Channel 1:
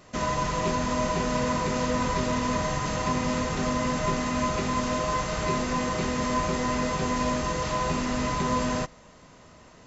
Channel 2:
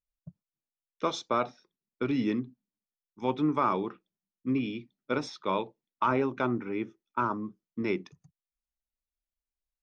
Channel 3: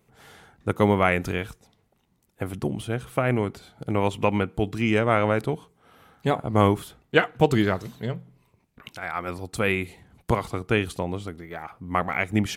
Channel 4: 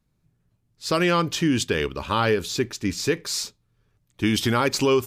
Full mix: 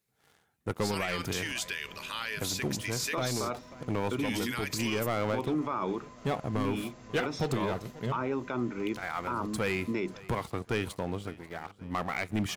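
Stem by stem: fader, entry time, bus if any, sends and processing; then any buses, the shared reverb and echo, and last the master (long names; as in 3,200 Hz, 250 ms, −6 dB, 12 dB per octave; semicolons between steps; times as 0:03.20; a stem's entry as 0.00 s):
−15.5 dB, 1.35 s, no send, no echo send, downward compressor 4 to 1, threshold −35 dBFS, peak gain reduction 11.5 dB
0.0 dB, 2.10 s, no send, no echo send, no processing
−15.0 dB, 0.00 s, no send, echo send −21.5 dB, hard clipping −6.5 dBFS, distortion −36 dB; high-pass filter 63 Hz 12 dB per octave; leveller curve on the samples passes 3
+1.5 dB, 0.00 s, no send, no echo send, first-order pre-emphasis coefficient 0.97; brickwall limiter −25 dBFS, peak gain reduction 10 dB; parametric band 2,000 Hz +10 dB 1 octave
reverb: not used
echo: repeating echo 540 ms, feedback 43%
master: brickwall limiter −22.5 dBFS, peak gain reduction 10.5 dB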